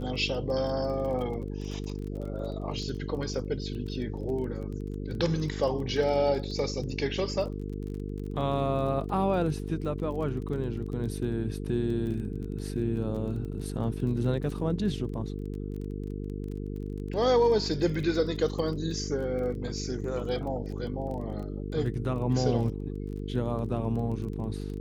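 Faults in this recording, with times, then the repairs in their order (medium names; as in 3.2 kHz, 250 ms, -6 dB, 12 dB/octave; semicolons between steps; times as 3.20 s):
buzz 50 Hz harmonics 9 -35 dBFS
crackle 21 per s -37 dBFS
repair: de-click; de-hum 50 Hz, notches 9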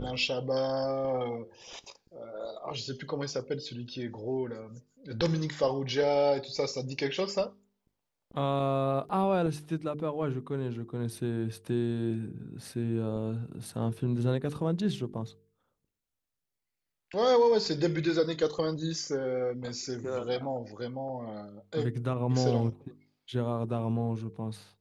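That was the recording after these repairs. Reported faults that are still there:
nothing left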